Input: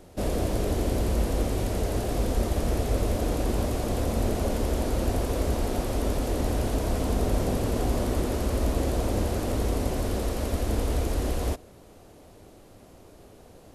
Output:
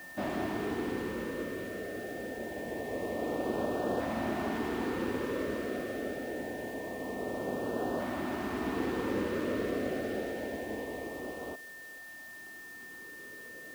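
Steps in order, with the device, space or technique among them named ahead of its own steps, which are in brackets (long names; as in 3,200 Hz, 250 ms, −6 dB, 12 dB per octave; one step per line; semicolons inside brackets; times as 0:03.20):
shortwave radio (band-pass filter 260–2,500 Hz; amplitude tremolo 0.22 Hz, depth 63%; auto-filter notch saw up 0.25 Hz 420–2,200 Hz; steady tone 1,800 Hz −47 dBFS; white noise bed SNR 21 dB)
level +1.5 dB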